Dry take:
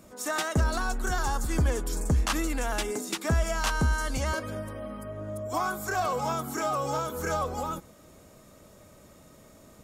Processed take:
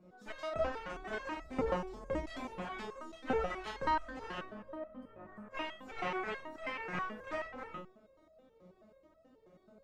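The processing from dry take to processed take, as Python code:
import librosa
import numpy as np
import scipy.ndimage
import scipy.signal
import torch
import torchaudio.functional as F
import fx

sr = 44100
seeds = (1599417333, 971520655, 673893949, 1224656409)

y = fx.curve_eq(x, sr, hz=(110.0, 580.0, 1400.0, 4200.0, 9900.0), db=(0, 6, -4, -9, -29))
y = fx.cheby_harmonics(y, sr, harmonics=(3, 7, 8), levels_db=(-11, -24, -34), full_scale_db=-11.0)
y = fx.room_early_taps(y, sr, ms=(33, 49), db=(-6.0, -8.5))
y = fx.resonator_held(y, sr, hz=9.3, low_hz=180.0, high_hz=650.0)
y = F.gain(torch.from_numpy(y), 13.0).numpy()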